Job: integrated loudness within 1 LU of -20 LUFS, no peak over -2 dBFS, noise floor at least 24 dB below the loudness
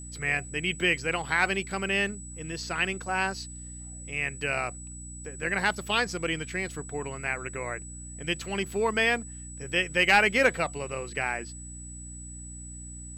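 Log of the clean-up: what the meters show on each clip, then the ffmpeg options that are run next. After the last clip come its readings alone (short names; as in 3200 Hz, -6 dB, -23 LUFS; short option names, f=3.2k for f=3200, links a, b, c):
hum 60 Hz; harmonics up to 300 Hz; hum level -41 dBFS; steady tone 7900 Hz; tone level -43 dBFS; loudness -28.0 LUFS; peak -10.5 dBFS; loudness target -20.0 LUFS
-> -af "bandreject=f=60:t=h:w=4,bandreject=f=120:t=h:w=4,bandreject=f=180:t=h:w=4,bandreject=f=240:t=h:w=4,bandreject=f=300:t=h:w=4"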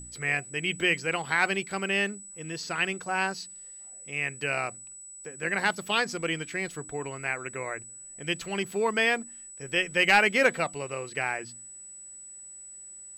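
hum none; steady tone 7900 Hz; tone level -43 dBFS
-> -af "bandreject=f=7.9k:w=30"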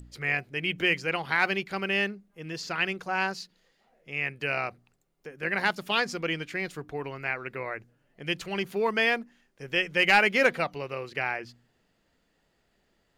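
steady tone none; loudness -28.0 LUFS; peak -10.5 dBFS; loudness target -20.0 LUFS
-> -af "volume=8dB"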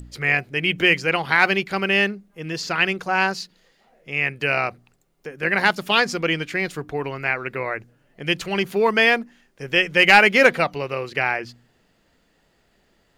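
loudness -20.0 LUFS; peak -2.5 dBFS; noise floor -64 dBFS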